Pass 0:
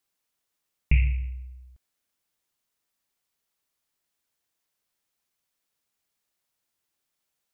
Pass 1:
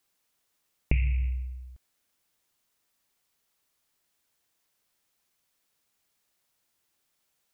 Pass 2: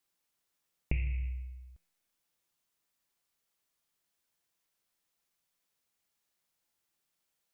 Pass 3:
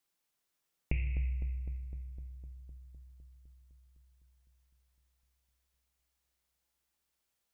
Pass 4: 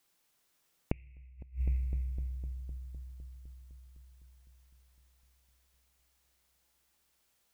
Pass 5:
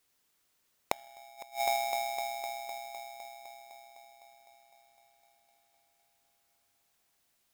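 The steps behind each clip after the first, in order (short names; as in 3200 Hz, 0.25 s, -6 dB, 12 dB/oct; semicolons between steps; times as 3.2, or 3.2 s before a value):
compressor 5:1, threshold -27 dBFS, peak gain reduction 11.5 dB; gain +5 dB
resonator 170 Hz, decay 1 s, harmonics all, mix 70%; gain +3 dB
darkening echo 0.254 s, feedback 73%, low-pass 1800 Hz, level -9.5 dB; gain -1 dB
flipped gate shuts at -30 dBFS, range -29 dB; gain +8.5 dB
polarity switched at an audio rate 750 Hz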